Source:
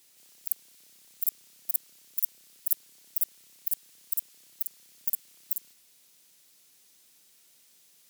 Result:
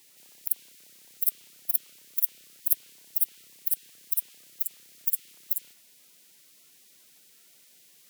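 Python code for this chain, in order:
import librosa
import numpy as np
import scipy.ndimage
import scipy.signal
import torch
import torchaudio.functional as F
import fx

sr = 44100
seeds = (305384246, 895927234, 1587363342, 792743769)

y = fx.spec_quant(x, sr, step_db=30)
y = fx.dynamic_eq(y, sr, hz=3000.0, q=1.3, threshold_db=-59.0, ratio=4.0, max_db=5)
y = y * 10.0 ** (3.5 / 20.0)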